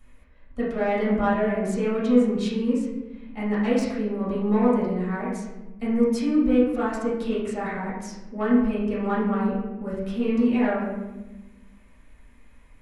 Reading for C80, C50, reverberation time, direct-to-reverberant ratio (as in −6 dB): 4.5 dB, 1.0 dB, 1.1 s, −10.0 dB